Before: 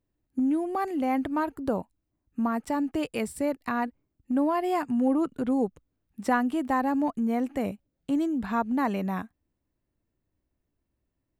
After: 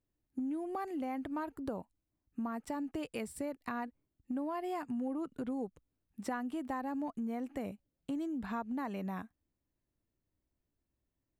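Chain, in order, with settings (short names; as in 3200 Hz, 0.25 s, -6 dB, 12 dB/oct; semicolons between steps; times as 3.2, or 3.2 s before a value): compressor 3:1, threshold -30 dBFS, peak gain reduction 8.5 dB; gain -6 dB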